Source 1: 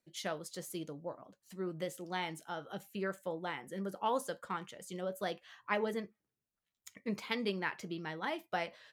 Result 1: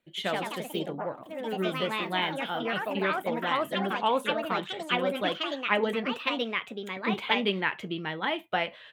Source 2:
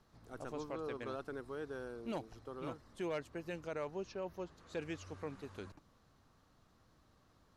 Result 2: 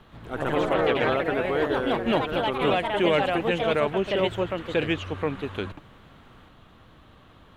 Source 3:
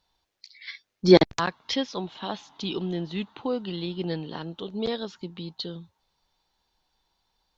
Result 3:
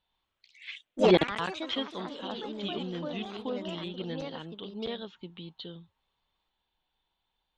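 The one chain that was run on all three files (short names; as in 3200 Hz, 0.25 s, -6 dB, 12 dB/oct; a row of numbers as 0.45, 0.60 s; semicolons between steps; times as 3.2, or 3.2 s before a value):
echoes that change speed 0.12 s, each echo +3 st, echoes 3; resonant high shelf 4100 Hz -8 dB, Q 3; normalise peaks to -9 dBFS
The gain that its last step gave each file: +7.0, +16.5, -7.5 dB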